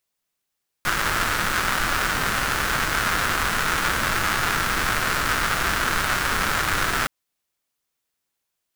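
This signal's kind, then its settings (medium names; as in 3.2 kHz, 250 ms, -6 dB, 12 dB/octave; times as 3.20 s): rain from filtered ticks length 6.22 s, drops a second 300, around 1.4 kHz, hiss -3.5 dB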